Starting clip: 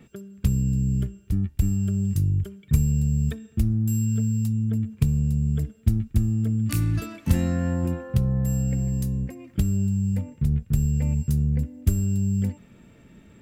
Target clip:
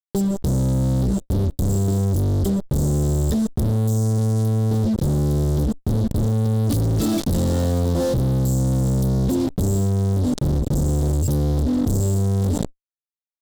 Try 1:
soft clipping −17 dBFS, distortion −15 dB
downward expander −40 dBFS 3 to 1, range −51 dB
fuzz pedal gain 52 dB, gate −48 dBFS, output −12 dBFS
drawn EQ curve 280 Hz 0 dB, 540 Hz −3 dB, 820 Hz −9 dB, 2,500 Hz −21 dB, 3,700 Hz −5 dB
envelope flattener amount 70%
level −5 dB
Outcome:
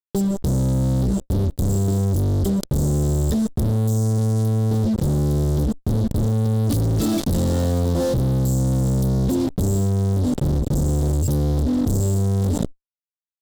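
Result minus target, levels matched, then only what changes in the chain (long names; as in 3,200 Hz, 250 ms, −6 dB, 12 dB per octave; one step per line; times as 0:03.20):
soft clipping: distortion −6 dB
change: soft clipping −25 dBFS, distortion −8 dB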